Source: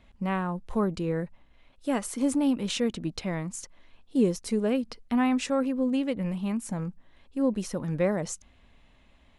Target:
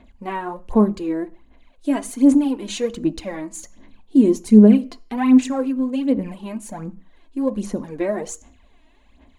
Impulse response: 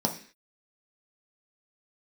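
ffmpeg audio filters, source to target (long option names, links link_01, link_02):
-filter_complex "[0:a]asettb=1/sr,asplit=3[link_01][link_02][link_03];[link_01]atrim=end=3.624[link_04];[link_02]atrim=start=3.62:end=4.78,asetpts=PTS-STARTPTS,afade=type=in:duration=0.004:curve=qsin,afade=type=out:start_time=1.156:duration=0.004:curve=qsin,equalizer=frequency=150:width_type=o:width=1.7:gain=11[link_05];[link_03]atrim=start=4.776[link_06];[link_04][link_05]acrossfade=duration=0.004:curve1=hsin:curve2=qsin[link_07];[link_07][link_06]acrossfade=duration=0.004:curve1=qsin:curve2=hsin,aphaser=in_gain=1:out_gain=1:delay=3.2:decay=0.67:speed=1.3:type=sinusoidal,asplit=2[link_08][link_09];[1:a]atrim=start_sample=2205,asetrate=52920,aresample=44100[link_10];[link_09][link_10]afir=irnorm=-1:irlink=0,volume=-14.5dB[link_11];[link_08][link_11]amix=inputs=2:normalize=0,volume=-1.5dB"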